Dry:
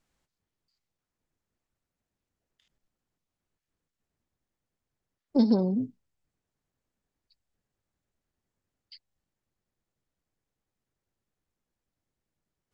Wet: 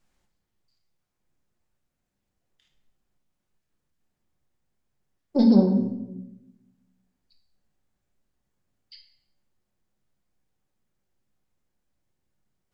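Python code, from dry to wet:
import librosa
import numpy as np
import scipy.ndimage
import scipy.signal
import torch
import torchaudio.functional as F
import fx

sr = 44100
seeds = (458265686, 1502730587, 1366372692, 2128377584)

y = fx.room_shoebox(x, sr, seeds[0], volume_m3=310.0, walls='mixed', distance_m=0.93)
y = y * 10.0 ** (1.5 / 20.0)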